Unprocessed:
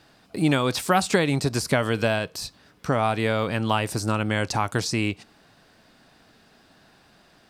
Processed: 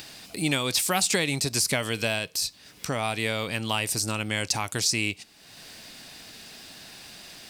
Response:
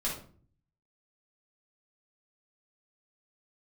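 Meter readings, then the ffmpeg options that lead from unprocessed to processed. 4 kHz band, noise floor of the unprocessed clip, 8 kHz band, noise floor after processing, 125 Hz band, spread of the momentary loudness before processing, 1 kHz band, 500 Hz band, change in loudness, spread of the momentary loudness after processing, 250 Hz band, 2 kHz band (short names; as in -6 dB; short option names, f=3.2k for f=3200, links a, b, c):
+4.0 dB, -58 dBFS, +7.0 dB, -53 dBFS, -6.5 dB, 10 LU, -6.5 dB, -6.5 dB, -2.0 dB, 19 LU, -6.5 dB, -1.0 dB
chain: -af "acompressor=mode=upward:threshold=-33dB:ratio=2.5,aexciter=amount=2.7:drive=7:freq=2k,volume=-6.5dB"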